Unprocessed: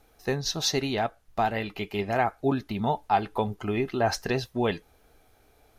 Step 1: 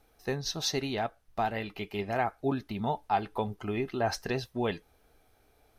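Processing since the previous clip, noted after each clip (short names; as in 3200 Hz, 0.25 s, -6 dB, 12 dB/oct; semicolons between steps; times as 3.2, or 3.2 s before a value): notch 6900 Hz, Q 15; gain -4.5 dB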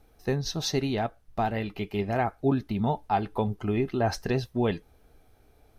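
low shelf 410 Hz +8.5 dB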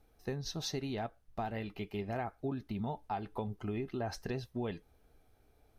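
compressor 4:1, threshold -26 dBFS, peak gain reduction 6.5 dB; gain -7.5 dB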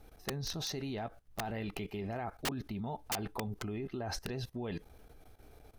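level quantiser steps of 17 dB; wrapped overs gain 40.5 dB; gain +13 dB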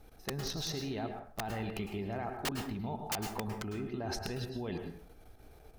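plate-style reverb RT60 0.51 s, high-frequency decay 0.6×, pre-delay 95 ms, DRR 5 dB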